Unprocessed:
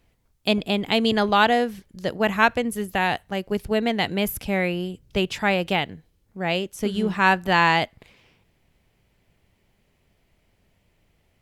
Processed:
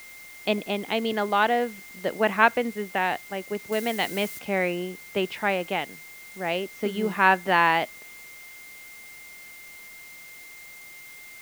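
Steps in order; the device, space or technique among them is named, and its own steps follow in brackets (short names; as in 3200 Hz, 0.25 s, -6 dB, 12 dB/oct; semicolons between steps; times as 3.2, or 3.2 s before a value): shortwave radio (BPF 250–2800 Hz; tremolo 0.42 Hz, depth 36%; whine 2100 Hz -44 dBFS; white noise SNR 21 dB); 3.72–4.39 high shelf 4100 Hz +10.5 dB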